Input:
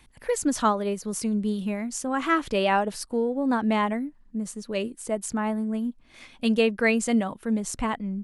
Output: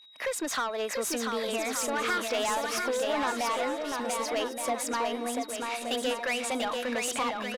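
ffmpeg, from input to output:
-filter_complex "[0:a]agate=range=0.0224:threshold=0.00562:ratio=3:detection=peak,highpass=400,highshelf=f=7400:g=-9.5,acompressor=threshold=0.02:ratio=4,asplit=2[s0][s1];[s1]highpass=f=720:p=1,volume=10,asoftclip=type=tanh:threshold=0.075[s2];[s0][s2]amix=inputs=2:normalize=0,lowpass=f=6900:p=1,volume=0.501,aecho=1:1:750|1275|1642|1900|2080:0.631|0.398|0.251|0.158|0.1,aeval=exprs='val(0)+0.00251*sin(2*PI*3500*n/s)':c=same,asetrate=48000,aresample=44100"

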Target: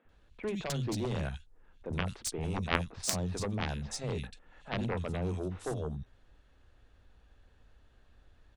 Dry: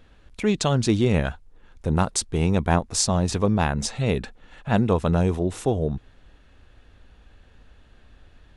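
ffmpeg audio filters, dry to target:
-filter_complex "[0:a]acrossover=split=210|2600[s0][s1][s2];[s0]adelay=50[s3];[s2]adelay=90[s4];[s3][s1][s4]amix=inputs=3:normalize=0,aeval=exprs='0.631*(cos(1*acos(clip(val(0)/0.631,-1,1)))-cos(1*PI/2))+0.282*(cos(3*acos(clip(val(0)/0.631,-1,1)))-cos(3*PI/2))':c=same"

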